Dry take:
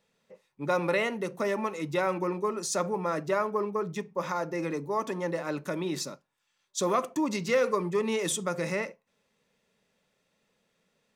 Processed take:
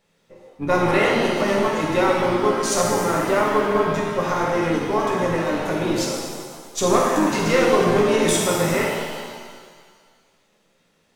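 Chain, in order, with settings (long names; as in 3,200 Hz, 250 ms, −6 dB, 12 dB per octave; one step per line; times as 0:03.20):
gain on one half-wave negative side −3 dB
pitch-shifted copies added −12 semitones −18 dB, −7 semitones −10 dB
reverb with rising layers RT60 1.7 s, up +7 semitones, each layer −8 dB, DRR −3 dB
level +5.5 dB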